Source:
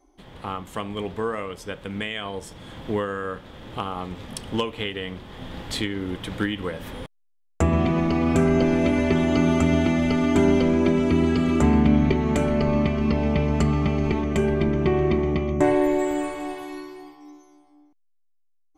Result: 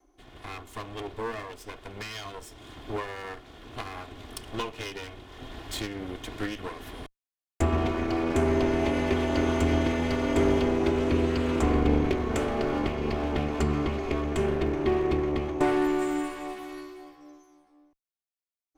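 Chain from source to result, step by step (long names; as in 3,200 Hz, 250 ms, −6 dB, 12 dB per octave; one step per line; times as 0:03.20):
lower of the sound and its delayed copy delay 2.8 ms
level −3.5 dB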